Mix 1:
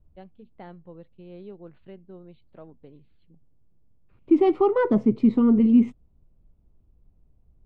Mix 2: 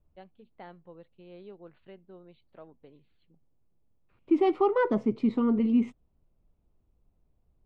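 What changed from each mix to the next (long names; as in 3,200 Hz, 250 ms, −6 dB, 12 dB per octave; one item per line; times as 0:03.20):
master: add low-shelf EQ 350 Hz −10.5 dB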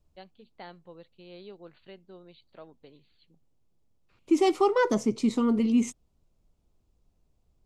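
master: remove high-frequency loss of the air 440 metres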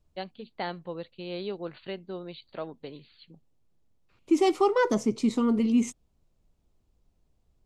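first voice +11.5 dB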